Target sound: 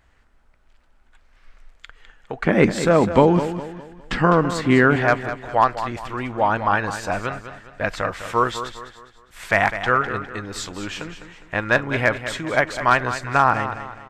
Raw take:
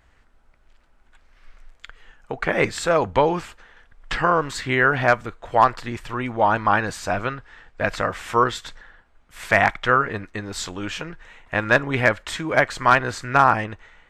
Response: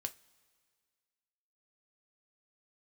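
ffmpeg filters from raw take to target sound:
-filter_complex "[0:a]asettb=1/sr,asplit=3[a][b][c];[a]atrim=end=2.454[d];[b]atrim=start=2.45:end=4.96,asetpts=PTS-STARTPTS,afade=t=in:d=0.004:c=qsin,afade=t=out:st=2.506:d=0.004:c=qsin,equalizer=f=220:t=o:w=1.5:g=14.5[e];[c]atrim=start=4.956[f];[d][e]acrossfade=d=0.004:c1=hsin:c2=qsin[g];[g][f]acrossfade=d=0.004:c1=qsin:c2=hsin,aecho=1:1:204|408|612|816:0.282|0.11|0.0429|0.0167,volume=-1dB"

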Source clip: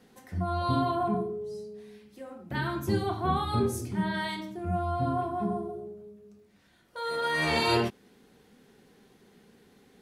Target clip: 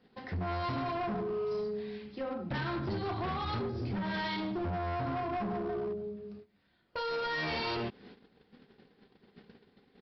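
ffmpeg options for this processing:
-af "agate=range=-16dB:threshold=-56dB:ratio=16:detection=peak,acompressor=threshold=-36dB:ratio=8,aresample=11025,asoftclip=type=hard:threshold=-39.5dB,aresample=44100,volume=8dB"

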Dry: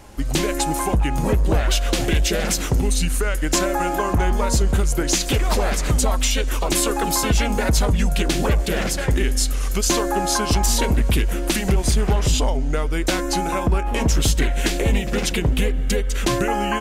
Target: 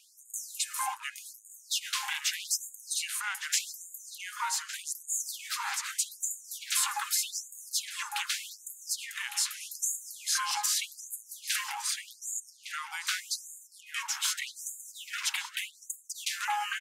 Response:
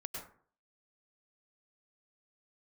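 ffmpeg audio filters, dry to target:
-filter_complex "[0:a]asplit=2[a][b];[b]adelay=1159,lowpass=f=2.1k:p=1,volume=-5.5dB,asplit=2[c][d];[d]adelay=1159,lowpass=f=2.1k:p=1,volume=0.24,asplit=2[e][f];[f]adelay=1159,lowpass=f=2.1k:p=1,volume=0.24[g];[a][c][e][g]amix=inputs=4:normalize=0,afftfilt=real='re*gte(b*sr/1024,760*pow(6600/760,0.5+0.5*sin(2*PI*0.83*pts/sr)))':imag='im*gte(b*sr/1024,760*pow(6600/760,0.5+0.5*sin(2*PI*0.83*pts/sr)))':win_size=1024:overlap=0.75,volume=-6dB"

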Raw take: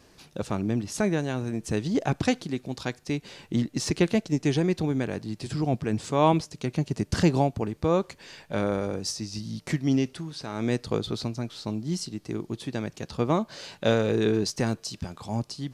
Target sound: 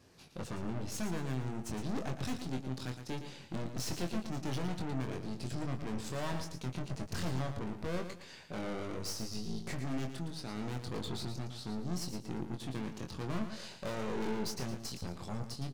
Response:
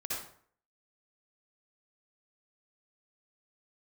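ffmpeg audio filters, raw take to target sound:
-filter_complex "[0:a]highpass=100,lowshelf=f=130:g=11.5,aeval=exprs='(tanh(44.7*val(0)+0.8)-tanh(0.8))/44.7':c=same,asplit=2[a][b];[b]adelay=23,volume=-5.5dB[c];[a][c]amix=inputs=2:normalize=0,asplit=2[d][e];[e]aecho=0:1:114|228|342:0.355|0.103|0.0298[f];[d][f]amix=inputs=2:normalize=0,volume=-3.5dB"

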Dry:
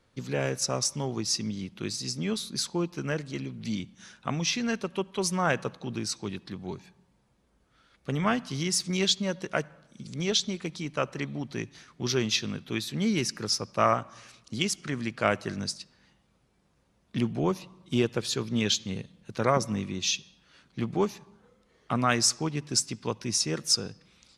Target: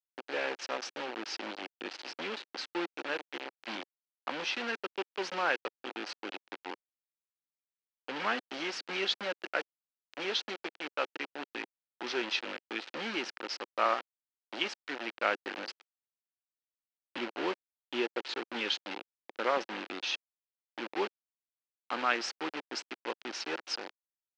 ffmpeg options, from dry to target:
-af "acrusher=bits=4:mix=0:aa=0.000001,highpass=f=360:w=0.5412,highpass=f=360:w=1.3066,equalizer=f=430:t=q:w=4:g=-7,equalizer=f=650:t=q:w=4:g=-8,equalizer=f=1.1k:t=q:w=4:g=-6,equalizer=f=2.1k:t=q:w=4:g=-3,equalizer=f=3.6k:t=q:w=4:g=-5,lowpass=f=3.8k:w=0.5412,lowpass=f=3.8k:w=1.3066"

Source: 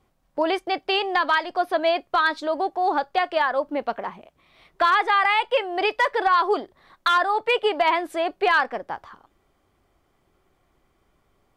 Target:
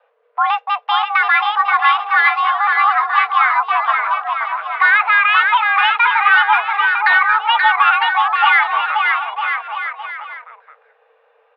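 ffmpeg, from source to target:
-af "lowpass=f=2.6k:w=0.5412,lowpass=f=2.6k:w=1.3066,aecho=1:1:530|954|1293|1565|1782:0.631|0.398|0.251|0.158|0.1,afreqshift=440,volume=6.5dB"

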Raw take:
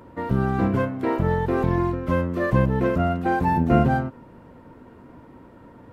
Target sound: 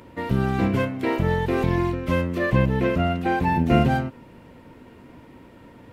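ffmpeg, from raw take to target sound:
-filter_complex "[0:a]highshelf=f=1.8k:t=q:w=1.5:g=7,asettb=1/sr,asplit=3[a][b][c];[a]atrim=end=2.384[d];[b]atrim=start=2.38:end=3.64,asetpts=PTS-STARTPTS,afade=t=in:d=0.004:c=qsin,afade=t=out:st=1.256:d=0.004:c=qsin,acrossover=split=3900[e][f];[f]acompressor=threshold=-52dB:ratio=4:attack=1:release=60[g];[e][g]amix=inputs=2:normalize=0[h];[c]atrim=start=3.636[i];[d][h]acrossfade=d=0.004:c1=hsin:c2=qsin[j];[j][i]acrossfade=d=0.004:c1=qsin:c2=hsin"

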